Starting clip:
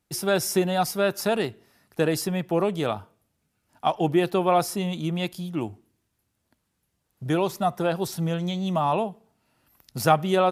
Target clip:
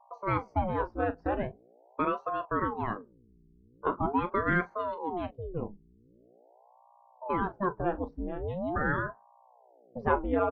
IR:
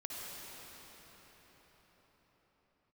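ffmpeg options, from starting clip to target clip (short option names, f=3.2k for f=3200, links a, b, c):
-af "acontrast=44,agate=range=-12dB:threshold=-49dB:ratio=16:detection=peak,afftdn=nr=29:nf=-28,aeval=exprs='val(0)+0.00447*(sin(2*PI*60*n/s)+sin(2*PI*2*60*n/s)/2+sin(2*PI*3*60*n/s)/3+sin(2*PI*4*60*n/s)/4+sin(2*PI*5*60*n/s)/5)':c=same,lowpass=f=2k:w=0.5412,lowpass=f=2k:w=1.3066,aecho=1:1:21|40:0.211|0.188,aeval=exprs='val(0)*sin(2*PI*490*n/s+490*0.8/0.43*sin(2*PI*0.43*n/s))':c=same,volume=-9dB"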